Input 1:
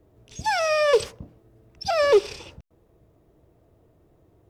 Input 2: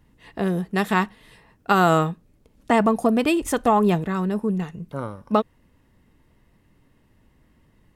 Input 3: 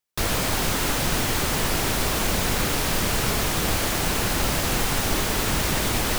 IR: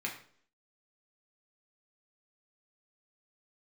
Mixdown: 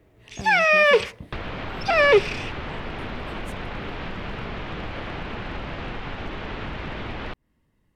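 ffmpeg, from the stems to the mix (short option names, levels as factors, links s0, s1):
-filter_complex "[0:a]acrossover=split=3700[s0][s1];[s1]acompressor=threshold=0.00708:ratio=4:attack=1:release=60[s2];[s0][s2]amix=inputs=2:normalize=0,equalizer=f=2200:w=1.2:g=13.5,volume=1[s3];[1:a]acompressor=threshold=0.0708:ratio=6,volume=0.335[s4];[2:a]lowpass=f=3100:w=0.5412,lowpass=f=3100:w=1.3066,asoftclip=type=hard:threshold=0.168,adelay=1150,volume=1.12[s5];[s4][s5]amix=inputs=2:normalize=0,acompressor=threshold=0.0355:ratio=6,volume=1[s6];[s3][s6]amix=inputs=2:normalize=0"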